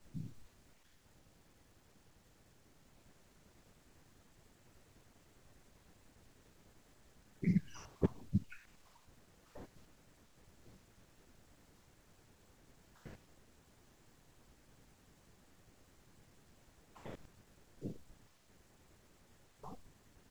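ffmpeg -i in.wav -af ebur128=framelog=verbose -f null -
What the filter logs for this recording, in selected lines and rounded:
Integrated loudness:
  I:         -42.8 LUFS
  Threshold: -59.6 LUFS
Loudness range:
  LRA:        25.0 LU
  Threshold: -69.0 LUFS
  LRA low:   -66.6 LUFS
  LRA high:  -41.6 LUFS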